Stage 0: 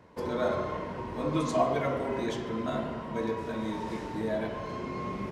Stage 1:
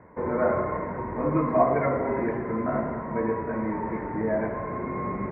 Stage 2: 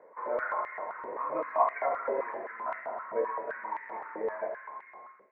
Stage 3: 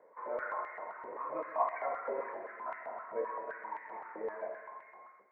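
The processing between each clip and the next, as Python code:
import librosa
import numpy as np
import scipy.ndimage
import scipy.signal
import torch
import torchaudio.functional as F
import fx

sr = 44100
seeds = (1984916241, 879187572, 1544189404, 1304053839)

y1 = scipy.signal.sosfilt(scipy.signal.ellip(4, 1.0, 40, 2100.0, 'lowpass', fs=sr, output='sos'), x)
y1 = y1 * librosa.db_to_amplitude(5.5)
y2 = fx.fade_out_tail(y1, sr, length_s=1.2)
y2 = fx.echo_wet_highpass(y2, sr, ms=76, feedback_pct=77, hz=2300.0, wet_db=-8)
y2 = fx.filter_held_highpass(y2, sr, hz=7.7, low_hz=510.0, high_hz=1900.0)
y2 = y2 * librosa.db_to_amplitude(-8.5)
y3 = fx.echo_feedback(y2, sr, ms=129, feedback_pct=49, wet_db=-13)
y3 = y3 * librosa.db_to_amplitude(-6.0)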